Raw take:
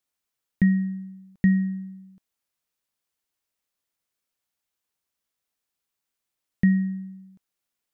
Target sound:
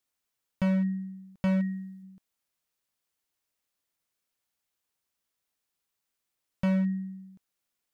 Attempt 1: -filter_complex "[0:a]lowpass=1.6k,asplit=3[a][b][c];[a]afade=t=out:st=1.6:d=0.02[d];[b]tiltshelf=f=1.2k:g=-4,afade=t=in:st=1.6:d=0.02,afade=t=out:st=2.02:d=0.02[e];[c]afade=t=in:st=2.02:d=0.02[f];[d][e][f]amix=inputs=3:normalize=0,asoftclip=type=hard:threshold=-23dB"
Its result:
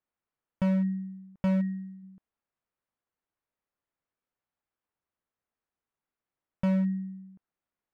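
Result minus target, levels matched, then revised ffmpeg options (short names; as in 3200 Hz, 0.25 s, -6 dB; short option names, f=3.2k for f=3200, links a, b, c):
2000 Hz band -4.5 dB
-filter_complex "[0:a]asplit=3[a][b][c];[a]afade=t=out:st=1.6:d=0.02[d];[b]tiltshelf=f=1.2k:g=-4,afade=t=in:st=1.6:d=0.02,afade=t=out:st=2.02:d=0.02[e];[c]afade=t=in:st=2.02:d=0.02[f];[d][e][f]amix=inputs=3:normalize=0,asoftclip=type=hard:threshold=-23dB"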